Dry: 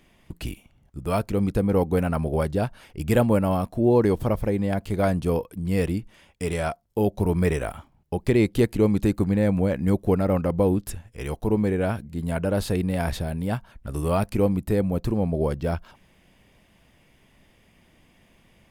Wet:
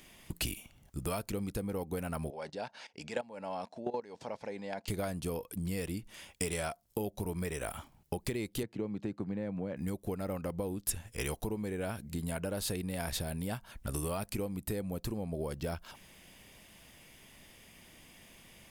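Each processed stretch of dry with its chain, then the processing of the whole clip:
2.3–4.88 level quantiser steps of 17 dB + speaker cabinet 300–6100 Hz, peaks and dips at 340 Hz -9 dB, 880 Hz +5 dB, 1200 Hz -6 dB, 3200 Hz -4 dB
8.63–9.77 HPF 110 Hz 24 dB/oct + tape spacing loss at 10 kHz 28 dB
whole clip: low shelf 190 Hz -3 dB; compressor 12:1, threshold -33 dBFS; high shelf 3400 Hz +12 dB

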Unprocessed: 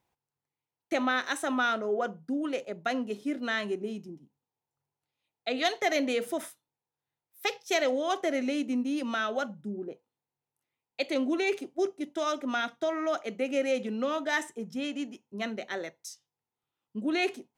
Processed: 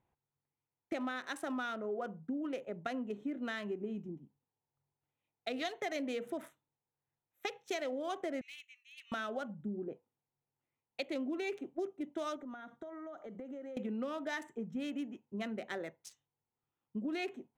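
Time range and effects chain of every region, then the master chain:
8.41–9.12 steep high-pass 2100 Hz + high shelf 6500 Hz -3.5 dB + core saturation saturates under 2100 Hz
12.36–13.77 bell 2600 Hz -11 dB 0.53 oct + compressor 10:1, threshold -41 dBFS + notch 2500 Hz, Q 15
whole clip: Wiener smoothing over 9 samples; low shelf 230 Hz +6.5 dB; compressor 4:1, threshold -33 dBFS; gain -3 dB

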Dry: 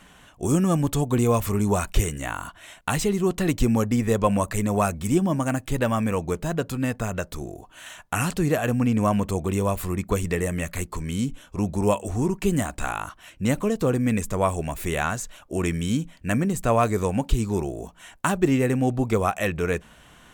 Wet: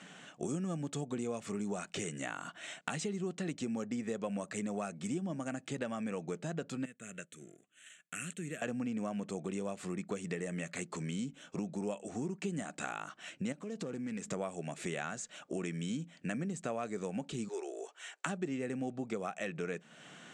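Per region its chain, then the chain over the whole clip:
6.85–8.62 G.711 law mismatch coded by A + pre-emphasis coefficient 0.8 + fixed phaser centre 2100 Hz, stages 4
13.52–14.31 self-modulated delay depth 0.097 ms + compressor 4:1, threshold -31 dBFS
17.48–18.26 elliptic high-pass 390 Hz, stop band 60 dB + bell 620 Hz -5.5 dB 1.2 oct
whole clip: elliptic band-pass 160–7800 Hz, stop band 40 dB; bell 1000 Hz -10 dB 0.31 oct; compressor 4:1, threshold -37 dBFS

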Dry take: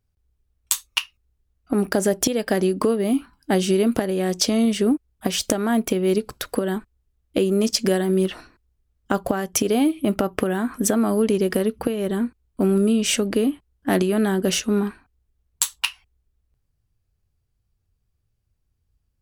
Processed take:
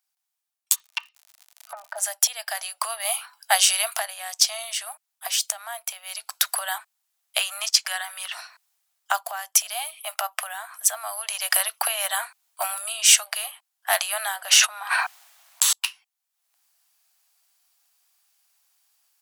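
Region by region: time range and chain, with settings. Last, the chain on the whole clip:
0.74–1.97 treble ducked by the level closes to 640 Hz, closed at -18 dBFS + comb 3.3 ms, depth 86% + crackle 110/s -38 dBFS
7.4–8.32 HPF 850 Hz 6 dB/oct + gate -34 dBFS, range -6 dB + EQ curve 330 Hz 0 dB, 1400 Hz +7 dB, 14000 Hz -5 dB
14.36–15.73 high shelf 4200 Hz -9.5 dB + fast leveller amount 100%
whole clip: steep high-pass 670 Hz 72 dB/oct; high shelf 3300 Hz +11 dB; AGC gain up to 13 dB; gain -1 dB

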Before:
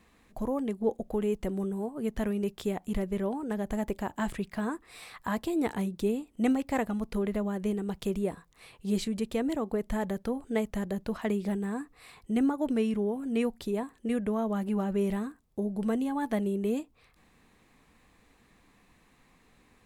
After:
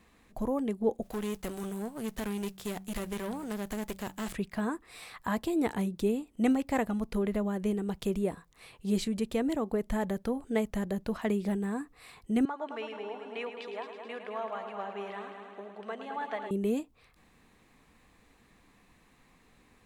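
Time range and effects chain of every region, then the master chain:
1.02–4.33 spectral whitening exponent 0.6 + de-hum 47.98 Hz, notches 4 + tube stage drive 30 dB, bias 0.65
12.45–16.51 Butterworth band-pass 1600 Hz, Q 0.51 + multi-head echo 0.107 s, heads first and second, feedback 64%, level -10 dB
whole clip: dry

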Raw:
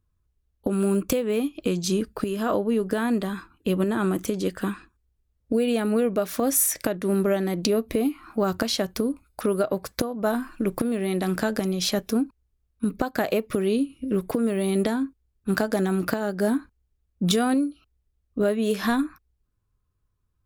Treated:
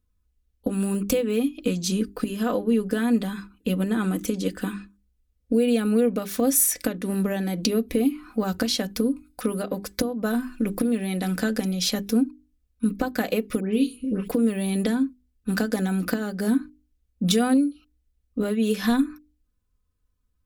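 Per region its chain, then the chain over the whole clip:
13.6–14.28 notches 60/120/180/240/300/360/420/480 Hz + dispersion highs, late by 0.136 s, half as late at 2400 Hz
whole clip: bell 940 Hz -6 dB 1.4 oct; notches 50/100/150/200/250/300/350/400 Hz; comb 4 ms, depth 62%

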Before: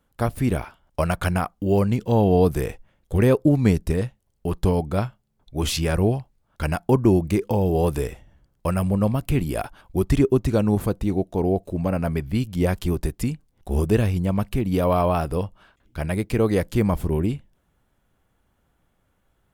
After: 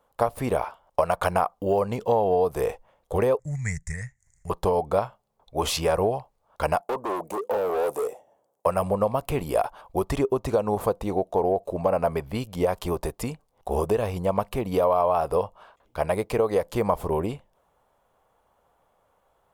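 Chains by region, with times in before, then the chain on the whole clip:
3.39–4.5 EQ curve 150 Hz 0 dB, 280 Hz -26 dB, 470 Hz -30 dB, 750 Hz -25 dB, 1100 Hz -24 dB, 2000 Hz +9 dB, 2900 Hz -25 dB, 4100 Hz -18 dB, 7000 Hz +12 dB, 13000 Hz -19 dB + upward compressor, threshold -42 dBFS
6.81–8.66 HPF 310 Hz + band shelf 2300 Hz -10.5 dB 2.6 oct + overloaded stage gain 28 dB
whole clip: band shelf 710 Hz +12 dB; compressor 10:1, threshold -14 dBFS; low shelf 410 Hz -7.5 dB; gain -1 dB

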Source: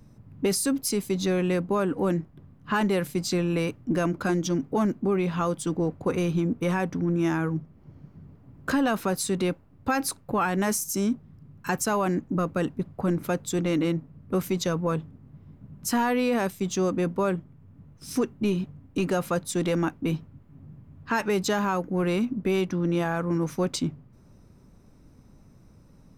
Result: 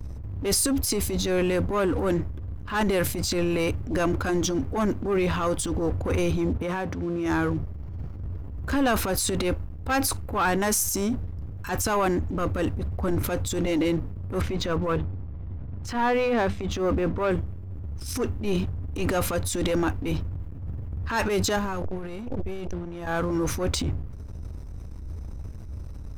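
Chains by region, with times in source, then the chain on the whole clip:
6.57–7.26 HPF 100 Hz + high shelf 4100 Hz -9 dB + compressor 2.5:1, threshold -27 dBFS
14.41–17.31 LPF 2900 Hz + notches 50/100/150/200/250/300 Hz
21.56–23.07 low shelf 210 Hz +11.5 dB + negative-ratio compressor -28 dBFS, ratio -0.5 + core saturation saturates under 440 Hz
whole clip: resonant low shelf 110 Hz +13.5 dB, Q 3; sample leveller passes 2; transient shaper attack -10 dB, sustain +7 dB; gain -2.5 dB

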